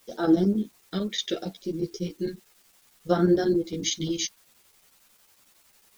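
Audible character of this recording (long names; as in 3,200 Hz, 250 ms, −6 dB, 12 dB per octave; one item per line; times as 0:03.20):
phaser sweep stages 2, 0.69 Hz, lowest notch 780–2,400 Hz
a quantiser's noise floor 10 bits, dither triangular
chopped level 11 Hz, depth 65%, duty 80%
a shimmering, thickened sound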